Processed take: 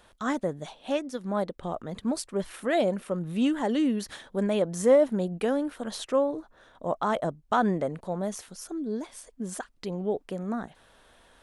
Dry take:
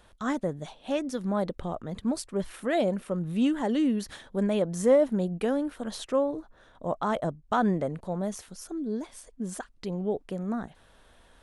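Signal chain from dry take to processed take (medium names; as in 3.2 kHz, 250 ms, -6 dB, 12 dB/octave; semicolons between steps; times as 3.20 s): bass shelf 170 Hz -7.5 dB; 0.94–1.63 s: upward expansion 1.5:1, over -37 dBFS; trim +2 dB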